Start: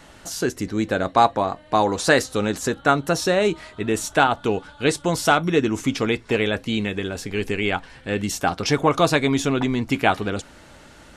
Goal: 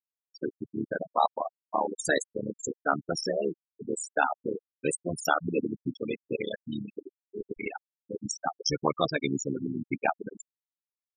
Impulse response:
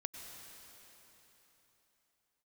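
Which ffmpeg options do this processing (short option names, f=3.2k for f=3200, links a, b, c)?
-af "aemphasis=mode=production:type=75fm,tremolo=f=74:d=1,afftfilt=real='re*gte(hypot(re,im),0.2)':imag='im*gte(hypot(re,im),0.2)':win_size=1024:overlap=0.75,volume=-4dB"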